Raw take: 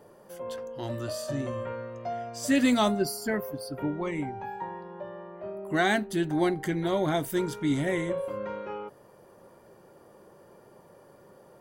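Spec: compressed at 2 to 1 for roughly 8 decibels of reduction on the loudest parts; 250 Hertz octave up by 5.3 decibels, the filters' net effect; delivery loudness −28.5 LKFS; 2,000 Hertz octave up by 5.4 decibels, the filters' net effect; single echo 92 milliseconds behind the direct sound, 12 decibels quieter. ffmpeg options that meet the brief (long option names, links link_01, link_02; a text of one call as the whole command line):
ffmpeg -i in.wav -af "equalizer=frequency=250:width_type=o:gain=6.5,equalizer=frequency=2000:width_type=o:gain=6.5,acompressor=threshold=-28dB:ratio=2,aecho=1:1:92:0.251,volume=2dB" out.wav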